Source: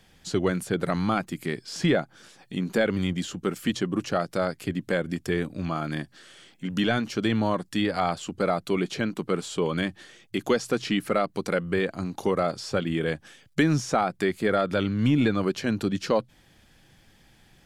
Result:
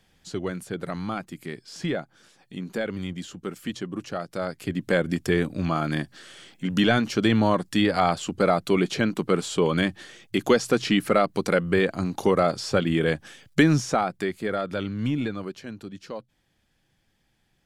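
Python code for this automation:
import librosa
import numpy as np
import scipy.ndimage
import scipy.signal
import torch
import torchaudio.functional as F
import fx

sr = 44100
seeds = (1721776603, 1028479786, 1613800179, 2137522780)

y = fx.gain(x, sr, db=fx.line((4.26, -5.5), (4.97, 4.0), (13.61, 4.0), (14.4, -4.0), (15.09, -4.0), (15.77, -12.5)))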